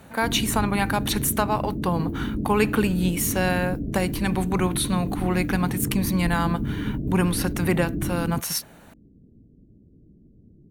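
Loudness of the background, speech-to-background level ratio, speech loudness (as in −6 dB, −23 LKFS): −29.5 LKFS, 4.5 dB, −25.0 LKFS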